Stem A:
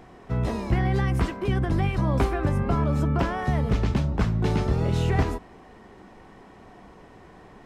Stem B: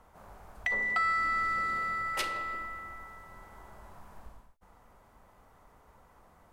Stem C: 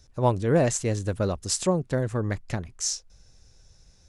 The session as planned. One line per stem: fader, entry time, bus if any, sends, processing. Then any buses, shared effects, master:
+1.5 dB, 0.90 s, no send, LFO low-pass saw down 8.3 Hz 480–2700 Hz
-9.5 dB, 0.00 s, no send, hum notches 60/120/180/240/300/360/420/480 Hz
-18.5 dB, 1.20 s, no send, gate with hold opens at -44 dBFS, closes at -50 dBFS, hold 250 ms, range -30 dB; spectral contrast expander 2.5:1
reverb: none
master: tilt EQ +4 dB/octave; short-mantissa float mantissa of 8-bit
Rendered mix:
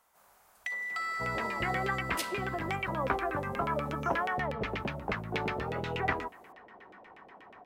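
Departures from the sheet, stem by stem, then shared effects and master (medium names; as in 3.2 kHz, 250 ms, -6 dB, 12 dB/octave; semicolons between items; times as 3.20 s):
stem A +1.5 dB -> -4.5 dB; master: missing short-mantissa float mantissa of 8-bit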